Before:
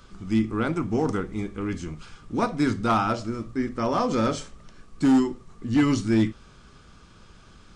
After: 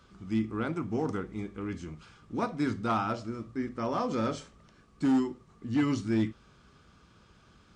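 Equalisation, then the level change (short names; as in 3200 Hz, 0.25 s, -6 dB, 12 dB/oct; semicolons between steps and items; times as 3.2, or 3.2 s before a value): HPF 55 Hz; high shelf 6800 Hz -7 dB; -6.5 dB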